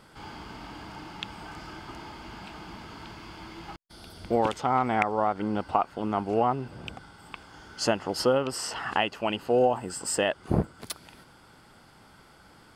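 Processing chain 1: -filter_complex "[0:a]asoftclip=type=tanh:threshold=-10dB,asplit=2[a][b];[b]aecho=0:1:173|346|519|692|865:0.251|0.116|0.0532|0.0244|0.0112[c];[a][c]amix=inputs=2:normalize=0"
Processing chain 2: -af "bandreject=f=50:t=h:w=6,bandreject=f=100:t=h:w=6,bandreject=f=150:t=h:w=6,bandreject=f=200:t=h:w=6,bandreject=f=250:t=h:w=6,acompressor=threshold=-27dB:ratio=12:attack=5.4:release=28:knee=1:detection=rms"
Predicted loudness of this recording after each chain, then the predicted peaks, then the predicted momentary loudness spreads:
-28.0, -34.5 LUFS; -10.5, -16.5 dBFS; 19, 15 LU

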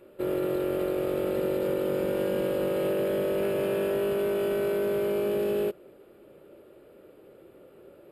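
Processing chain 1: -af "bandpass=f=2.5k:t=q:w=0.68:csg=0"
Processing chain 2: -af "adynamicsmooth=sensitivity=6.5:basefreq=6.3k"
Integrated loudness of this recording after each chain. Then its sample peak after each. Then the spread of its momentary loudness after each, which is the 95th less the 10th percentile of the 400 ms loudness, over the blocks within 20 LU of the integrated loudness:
-38.5, -28.0 LUFS; -26.0, -17.5 dBFS; 2, 1 LU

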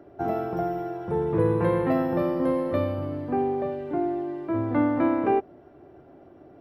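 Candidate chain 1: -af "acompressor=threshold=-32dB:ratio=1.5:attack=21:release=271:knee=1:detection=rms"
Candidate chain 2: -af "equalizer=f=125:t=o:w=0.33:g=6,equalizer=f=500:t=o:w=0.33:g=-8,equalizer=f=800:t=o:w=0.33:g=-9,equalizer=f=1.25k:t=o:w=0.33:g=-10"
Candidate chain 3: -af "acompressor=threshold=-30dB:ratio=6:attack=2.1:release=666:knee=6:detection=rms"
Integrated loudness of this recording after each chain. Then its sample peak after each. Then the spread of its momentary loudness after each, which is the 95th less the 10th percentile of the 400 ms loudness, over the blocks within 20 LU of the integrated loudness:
-30.0, -28.0, -36.5 LUFS; -16.0, -12.5, -24.0 dBFS; 5, 7, 16 LU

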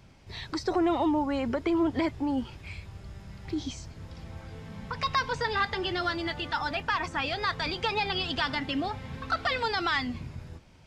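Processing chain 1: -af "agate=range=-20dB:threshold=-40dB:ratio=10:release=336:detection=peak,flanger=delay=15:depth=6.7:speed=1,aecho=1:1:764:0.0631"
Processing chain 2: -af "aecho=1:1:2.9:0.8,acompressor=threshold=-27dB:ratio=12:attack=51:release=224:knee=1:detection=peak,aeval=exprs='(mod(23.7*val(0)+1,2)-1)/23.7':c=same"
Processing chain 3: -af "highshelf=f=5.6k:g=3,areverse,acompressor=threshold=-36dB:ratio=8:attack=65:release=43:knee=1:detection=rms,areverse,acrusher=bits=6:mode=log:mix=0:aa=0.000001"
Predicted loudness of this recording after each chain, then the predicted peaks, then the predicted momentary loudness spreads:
-32.5, -32.0, -35.5 LUFS; -17.5, -27.5, -21.0 dBFS; 18, 13, 10 LU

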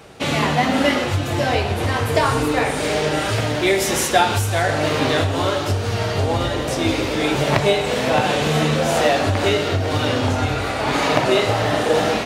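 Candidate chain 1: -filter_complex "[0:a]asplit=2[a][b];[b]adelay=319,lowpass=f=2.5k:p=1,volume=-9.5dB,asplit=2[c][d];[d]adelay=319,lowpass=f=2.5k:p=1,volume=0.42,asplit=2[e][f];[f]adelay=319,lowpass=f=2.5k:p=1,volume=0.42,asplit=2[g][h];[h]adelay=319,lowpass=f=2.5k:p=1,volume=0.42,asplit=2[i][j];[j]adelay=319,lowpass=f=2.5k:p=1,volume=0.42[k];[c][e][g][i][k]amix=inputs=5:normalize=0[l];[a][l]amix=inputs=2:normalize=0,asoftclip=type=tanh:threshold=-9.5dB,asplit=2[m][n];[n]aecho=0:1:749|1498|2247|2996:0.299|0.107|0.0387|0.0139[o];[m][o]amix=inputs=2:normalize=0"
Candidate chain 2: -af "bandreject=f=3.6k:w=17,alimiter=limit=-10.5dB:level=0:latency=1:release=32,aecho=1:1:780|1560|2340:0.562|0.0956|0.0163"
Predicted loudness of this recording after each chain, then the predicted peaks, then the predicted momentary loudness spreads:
-19.0, -19.0 LUFS; -8.5, -7.0 dBFS; 3, 2 LU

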